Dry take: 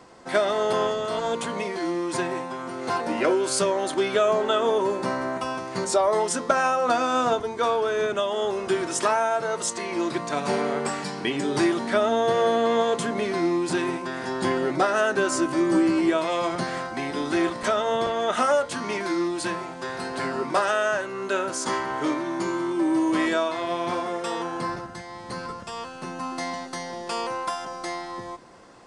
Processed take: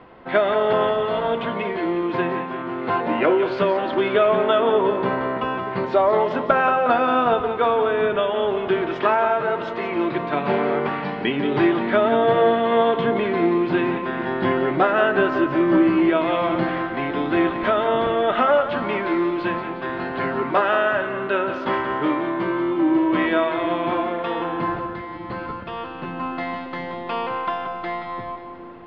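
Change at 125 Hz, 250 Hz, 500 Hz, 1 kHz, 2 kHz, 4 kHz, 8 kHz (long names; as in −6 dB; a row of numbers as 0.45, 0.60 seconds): +5.5 dB, +4.5 dB, +4.0 dB, +4.0 dB, +4.0 dB, −0.5 dB, below −30 dB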